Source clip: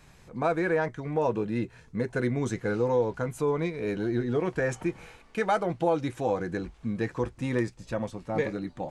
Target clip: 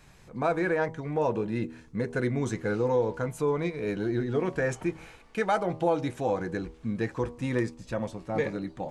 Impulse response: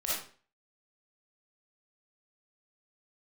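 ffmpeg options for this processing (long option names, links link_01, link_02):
-af "bandreject=frequency=80.15:width_type=h:width=4,bandreject=frequency=160.3:width_type=h:width=4,bandreject=frequency=240.45:width_type=h:width=4,bandreject=frequency=320.6:width_type=h:width=4,bandreject=frequency=400.75:width_type=h:width=4,bandreject=frequency=480.9:width_type=h:width=4,bandreject=frequency=561.05:width_type=h:width=4,bandreject=frequency=641.2:width_type=h:width=4,bandreject=frequency=721.35:width_type=h:width=4,bandreject=frequency=801.5:width_type=h:width=4,bandreject=frequency=881.65:width_type=h:width=4,bandreject=frequency=961.8:width_type=h:width=4,bandreject=frequency=1041.95:width_type=h:width=4,bandreject=frequency=1122.1:width_type=h:width=4,bandreject=frequency=1202.25:width_type=h:width=4"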